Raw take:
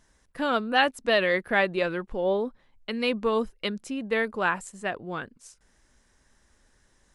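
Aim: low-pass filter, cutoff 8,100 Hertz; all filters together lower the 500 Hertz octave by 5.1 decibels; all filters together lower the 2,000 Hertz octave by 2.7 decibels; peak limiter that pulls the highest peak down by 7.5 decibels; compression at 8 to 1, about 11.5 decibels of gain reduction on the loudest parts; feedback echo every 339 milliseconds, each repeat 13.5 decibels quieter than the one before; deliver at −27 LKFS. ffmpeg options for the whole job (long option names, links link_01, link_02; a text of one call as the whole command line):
ffmpeg -i in.wav -af "lowpass=8100,equalizer=frequency=500:width_type=o:gain=-6,equalizer=frequency=2000:width_type=o:gain=-3,acompressor=threshold=-31dB:ratio=8,alimiter=level_in=4dB:limit=-24dB:level=0:latency=1,volume=-4dB,aecho=1:1:339|678:0.211|0.0444,volume=11.5dB" out.wav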